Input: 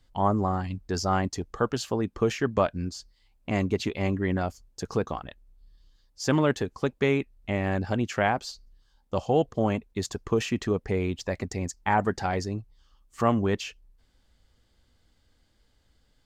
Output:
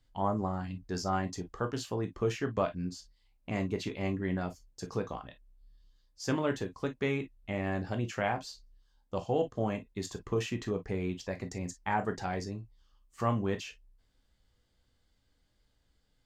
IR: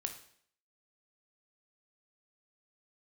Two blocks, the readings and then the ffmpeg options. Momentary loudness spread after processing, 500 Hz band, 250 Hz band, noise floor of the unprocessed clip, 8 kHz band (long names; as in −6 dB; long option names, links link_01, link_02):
9 LU, −6.5 dB, −6.5 dB, −67 dBFS, −6.5 dB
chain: -filter_complex "[1:a]atrim=start_sample=2205,atrim=end_sample=3969,asetrate=66150,aresample=44100[link_01];[0:a][link_01]afir=irnorm=-1:irlink=0,volume=-2.5dB"